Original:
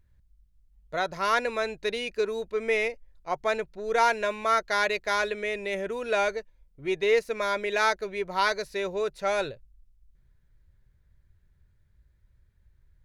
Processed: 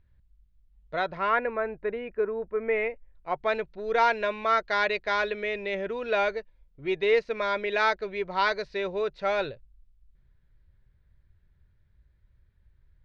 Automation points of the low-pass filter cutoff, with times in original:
low-pass filter 24 dB per octave
0:00.99 4,100 Hz
0:01.55 1,800 Hz
0:02.56 1,800 Hz
0:03.59 4,400 Hz

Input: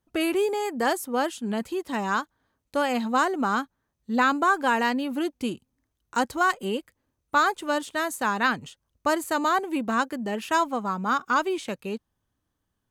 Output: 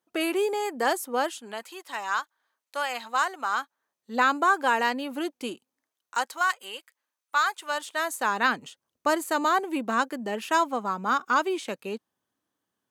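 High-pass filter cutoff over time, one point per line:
0:01.16 330 Hz
0:01.68 890 Hz
0:03.47 890 Hz
0:04.21 350 Hz
0:05.50 350 Hz
0:06.52 1,100 Hz
0:07.54 1,100 Hz
0:08.45 250 Hz

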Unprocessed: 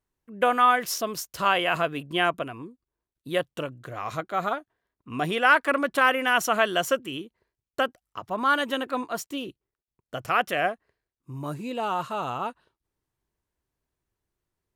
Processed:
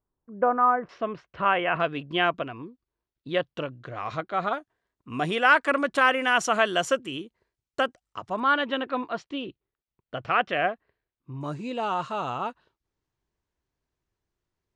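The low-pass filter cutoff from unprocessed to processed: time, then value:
low-pass filter 24 dB per octave
1,300 Hz
from 0:00.89 2,500 Hz
from 0:01.80 5,000 Hz
from 0:04.53 8,700 Hz
from 0:08.40 4,000 Hz
from 0:11.41 7,000 Hz

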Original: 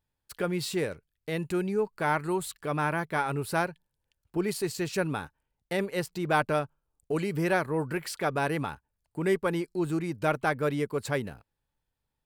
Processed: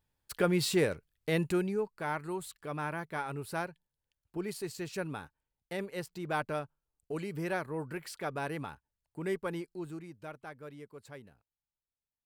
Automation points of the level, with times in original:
0:01.40 +2 dB
0:01.96 −8 dB
0:09.58 −8 dB
0:10.34 −19 dB

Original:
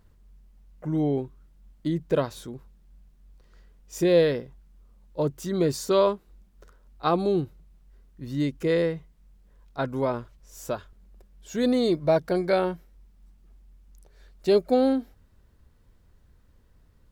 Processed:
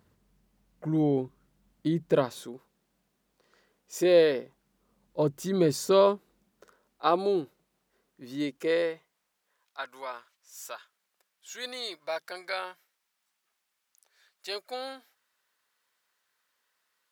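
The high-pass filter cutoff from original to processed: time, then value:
0:02.14 130 Hz
0:02.54 300 Hz
0:04.36 300 Hz
0:05.19 130 Hz
0:05.87 130 Hz
0:07.11 340 Hz
0:08.43 340 Hz
0:09.81 1,300 Hz

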